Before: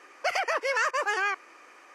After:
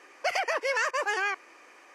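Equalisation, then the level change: bell 1300 Hz -5.5 dB 0.32 oct; 0.0 dB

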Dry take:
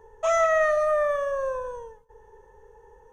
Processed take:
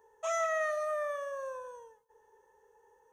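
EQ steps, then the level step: HPF 520 Hz 6 dB/oct; high shelf 6400 Hz +9.5 dB; -9.0 dB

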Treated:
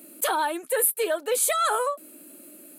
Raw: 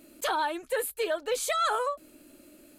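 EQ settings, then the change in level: elliptic high-pass 170 Hz; resonant high shelf 7600 Hz +9 dB, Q 1.5; +4.0 dB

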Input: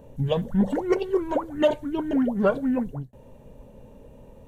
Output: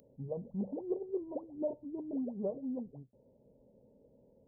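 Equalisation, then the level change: Gaussian blur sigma 18 samples; differentiator; +16.5 dB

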